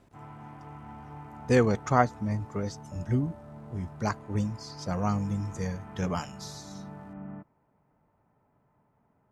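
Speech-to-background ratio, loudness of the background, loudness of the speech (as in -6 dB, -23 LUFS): 15.5 dB, -45.5 LUFS, -30.0 LUFS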